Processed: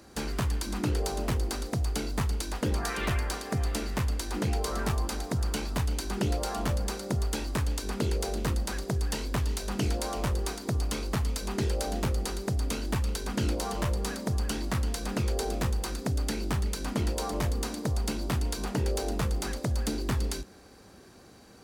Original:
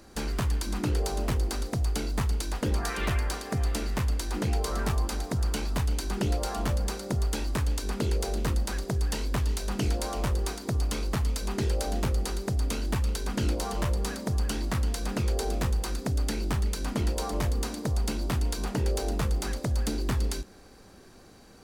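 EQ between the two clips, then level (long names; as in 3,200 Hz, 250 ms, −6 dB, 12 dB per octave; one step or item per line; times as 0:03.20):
high-pass filter 53 Hz
0.0 dB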